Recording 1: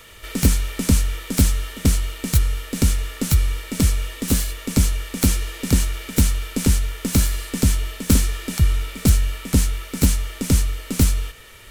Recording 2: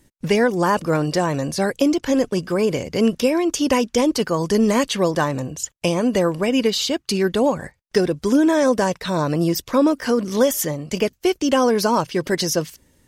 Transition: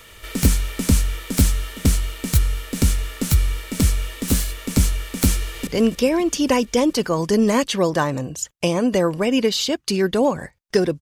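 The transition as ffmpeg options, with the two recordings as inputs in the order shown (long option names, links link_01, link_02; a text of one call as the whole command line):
ffmpeg -i cue0.wav -i cue1.wav -filter_complex "[0:a]apad=whole_dur=11.01,atrim=end=11.01,atrim=end=5.672[link_01];[1:a]atrim=start=2.878:end=8.22[link_02];[link_01][link_02]acrossfade=duration=0.004:curve1=hsin:curve2=hsin,asplit=2[link_03][link_04];[link_04]afade=type=in:start_time=5.41:duration=0.01,afade=type=out:start_time=5.67:duration=0.01,aecho=0:1:140|280|420|560|700|840|980|1120|1260|1400|1540|1680:0.316228|0.268794|0.228475|0.194203|0.165073|0.140312|0.119265|0.101375|0.0861691|0.0732437|0.0622572|0.0529186[link_05];[link_03][link_05]amix=inputs=2:normalize=0" out.wav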